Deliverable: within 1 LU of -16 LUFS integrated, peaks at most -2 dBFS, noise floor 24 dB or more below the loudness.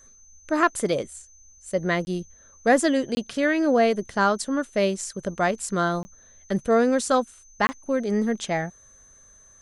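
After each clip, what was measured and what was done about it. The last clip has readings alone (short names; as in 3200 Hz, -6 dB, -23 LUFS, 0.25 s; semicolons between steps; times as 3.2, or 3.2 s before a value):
dropouts 4; longest dropout 20 ms; steady tone 6200 Hz; tone level -51 dBFS; loudness -24.0 LUFS; peak -7.5 dBFS; loudness target -16.0 LUFS
-> interpolate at 2.05/3.15/6.03/7.67, 20 ms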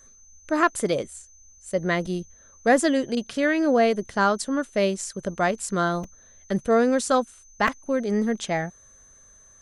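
dropouts 0; steady tone 6200 Hz; tone level -51 dBFS
-> notch 6200 Hz, Q 30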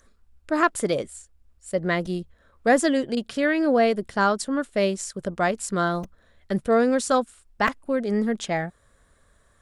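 steady tone none; loudness -24.0 LUFS; peak -7.5 dBFS; loudness target -16.0 LUFS
-> gain +8 dB; limiter -2 dBFS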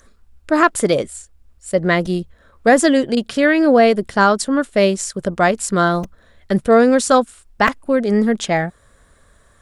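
loudness -16.5 LUFS; peak -2.0 dBFS; noise floor -53 dBFS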